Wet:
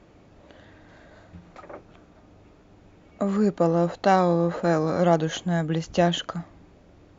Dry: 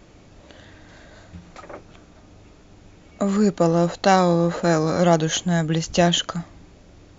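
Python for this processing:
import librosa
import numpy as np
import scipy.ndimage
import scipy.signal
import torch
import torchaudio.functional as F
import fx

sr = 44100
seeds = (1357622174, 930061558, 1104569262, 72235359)

y = fx.highpass(x, sr, hz=1000.0, slope=6)
y = fx.tilt_eq(y, sr, slope=-4.5)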